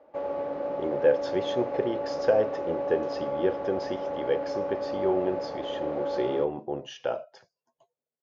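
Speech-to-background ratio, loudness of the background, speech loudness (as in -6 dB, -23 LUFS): 2.0 dB, -32.0 LUFS, -30.0 LUFS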